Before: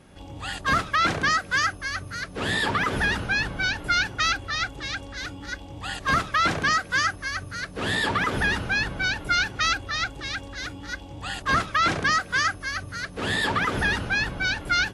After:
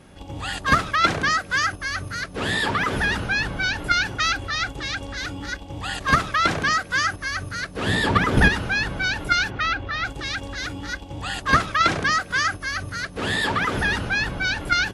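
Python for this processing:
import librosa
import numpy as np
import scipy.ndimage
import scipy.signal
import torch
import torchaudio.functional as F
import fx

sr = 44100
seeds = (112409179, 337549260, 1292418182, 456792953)

p1 = fx.low_shelf(x, sr, hz=460.0, db=7.5, at=(7.87, 8.49))
p2 = fx.lowpass(p1, sr, hz=2900.0, slope=12, at=(9.49, 10.03), fade=0.02)
p3 = fx.level_steps(p2, sr, step_db=20)
y = p2 + (p3 * 10.0 ** (1.5 / 20.0))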